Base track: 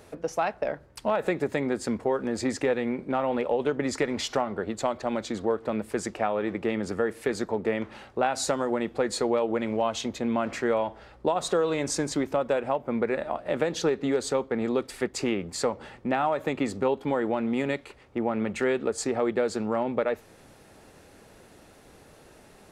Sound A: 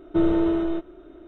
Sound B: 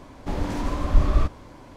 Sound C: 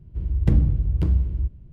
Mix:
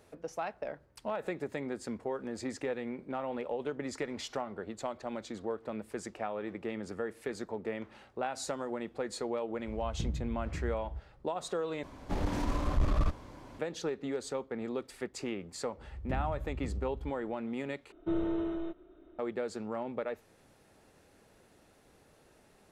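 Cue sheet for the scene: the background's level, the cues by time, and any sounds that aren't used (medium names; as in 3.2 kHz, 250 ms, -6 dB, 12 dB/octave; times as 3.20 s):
base track -10 dB
9.52 s: add C -17.5 dB
11.83 s: replace with B -3.5 dB + valve stage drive 17 dB, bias 0.35
15.62 s: add C -18 dB + fade-in on the opening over 0.53 s
17.92 s: replace with A -11.5 dB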